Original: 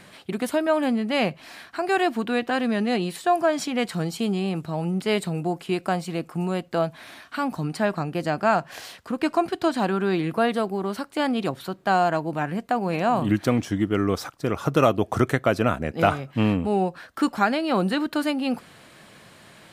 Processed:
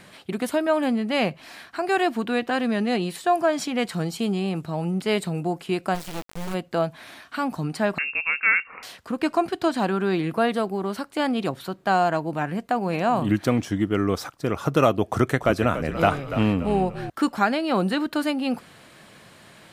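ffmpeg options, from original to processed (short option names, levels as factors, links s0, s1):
-filter_complex "[0:a]asplit=3[s0][s1][s2];[s0]afade=t=out:st=5.94:d=0.02[s3];[s1]acrusher=bits=3:dc=4:mix=0:aa=0.000001,afade=t=in:st=5.94:d=0.02,afade=t=out:st=6.53:d=0.02[s4];[s2]afade=t=in:st=6.53:d=0.02[s5];[s3][s4][s5]amix=inputs=3:normalize=0,asettb=1/sr,asplit=3[s6][s7][s8];[s6]atrim=end=7.984[s9];[s7]atrim=start=7.98:end=8.83,asetpts=PTS-STARTPTS,afade=t=in:d=0.004:c=qsin,afade=t=out:st=0.846:d=0.004:c=qsin,lowpass=f=2500:t=q:w=0.5098,lowpass=f=2500:t=q:w=0.6013,lowpass=f=2500:t=q:w=0.9,lowpass=f=2500:t=q:w=2.563,afreqshift=-2900[s10];[s8]atrim=start=8.826[s11];[s9][s10]acrossfade=d=0.004:c1=hsin:c2=qsin[s12];[s12][s11]acrossfade=d=0.004:c1=qsin:c2=hsin,asettb=1/sr,asplit=3[s13][s14][s15];[s13]atrim=end=15.104[s16];[s14]atrim=start=15.1:end=17.1,asetpts=PTS-STARTPTS,afade=t=in:d=0.004:c=qsin,afade=t=out:st=1.996:d=0.004:c=qsin,asplit=5[s17][s18][s19][s20][s21];[s18]adelay=288,afreqshift=-49,volume=0.282[s22];[s19]adelay=576,afreqshift=-98,volume=0.112[s23];[s20]adelay=864,afreqshift=-147,volume=0.0452[s24];[s21]adelay=1152,afreqshift=-196,volume=0.018[s25];[s17][s22][s23][s24][s25]amix=inputs=5:normalize=0,atrim=end_sample=88200[s26];[s15]atrim=start=17.096[s27];[s16][s26]acrossfade=d=0.004:c1=hsin:c2=qsin[s28];[s28][s27]acrossfade=d=0.004:c1=qsin:c2=hsin"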